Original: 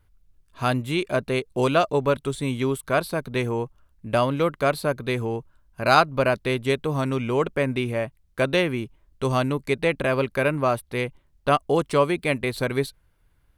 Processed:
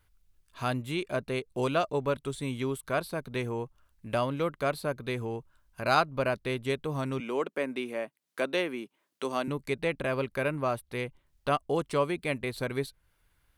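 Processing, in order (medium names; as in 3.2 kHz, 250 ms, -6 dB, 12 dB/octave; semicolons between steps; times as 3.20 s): 7.20–9.48 s: high-pass 220 Hz 24 dB/octave; tape noise reduction on one side only encoder only; trim -7.5 dB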